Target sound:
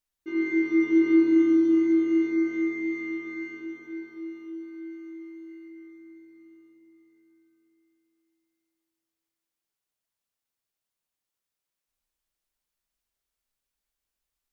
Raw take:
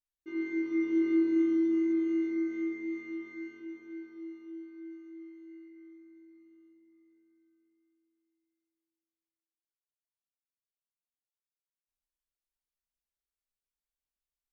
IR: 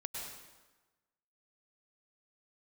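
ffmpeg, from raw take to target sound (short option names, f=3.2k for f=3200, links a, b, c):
-filter_complex "[0:a]asplit=2[a][b];[1:a]atrim=start_sample=2205,asetrate=57330,aresample=44100[c];[b][c]afir=irnorm=-1:irlink=0,volume=0.5dB[d];[a][d]amix=inputs=2:normalize=0,volume=4dB"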